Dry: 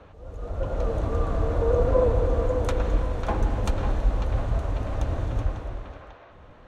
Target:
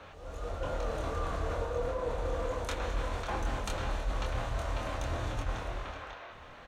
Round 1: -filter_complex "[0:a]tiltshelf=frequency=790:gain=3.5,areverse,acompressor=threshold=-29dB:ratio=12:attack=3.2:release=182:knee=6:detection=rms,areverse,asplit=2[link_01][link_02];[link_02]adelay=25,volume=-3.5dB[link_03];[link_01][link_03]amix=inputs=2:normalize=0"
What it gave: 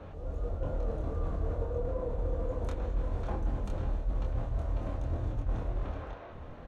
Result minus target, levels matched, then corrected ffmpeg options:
1,000 Hz band −7.5 dB
-filter_complex "[0:a]tiltshelf=frequency=790:gain=-7,areverse,acompressor=threshold=-29dB:ratio=12:attack=3.2:release=182:knee=6:detection=rms,areverse,asplit=2[link_01][link_02];[link_02]adelay=25,volume=-3.5dB[link_03];[link_01][link_03]amix=inputs=2:normalize=0"

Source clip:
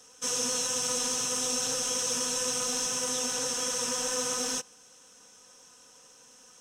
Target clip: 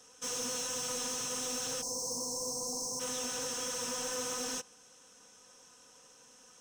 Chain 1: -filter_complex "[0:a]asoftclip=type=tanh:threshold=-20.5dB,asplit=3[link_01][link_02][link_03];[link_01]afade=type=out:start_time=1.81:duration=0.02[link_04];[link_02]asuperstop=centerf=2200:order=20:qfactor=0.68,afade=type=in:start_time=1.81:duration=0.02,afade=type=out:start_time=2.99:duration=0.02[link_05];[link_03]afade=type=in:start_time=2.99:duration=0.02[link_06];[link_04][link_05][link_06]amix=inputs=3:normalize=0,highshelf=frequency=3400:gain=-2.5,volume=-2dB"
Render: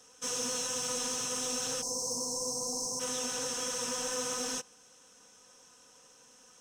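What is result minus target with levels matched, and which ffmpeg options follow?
soft clipping: distortion −10 dB
-filter_complex "[0:a]asoftclip=type=tanh:threshold=-28dB,asplit=3[link_01][link_02][link_03];[link_01]afade=type=out:start_time=1.81:duration=0.02[link_04];[link_02]asuperstop=centerf=2200:order=20:qfactor=0.68,afade=type=in:start_time=1.81:duration=0.02,afade=type=out:start_time=2.99:duration=0.02[link_05];[link_03]afade=type=in:start_time=2.99:duration=0.02[link_06];[link_04][link_05][link_06]amix=inputs=3:normalize=0,highshelf=frequency=3400:gain=-2.5,volume=-2dB"

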